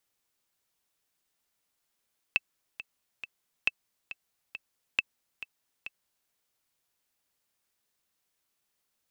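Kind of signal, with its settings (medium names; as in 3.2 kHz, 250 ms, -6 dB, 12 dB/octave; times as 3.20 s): metronome 137 bpm, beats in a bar 3, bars 3, 2.64 kHz, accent 14.5 dB -10.5 dBFS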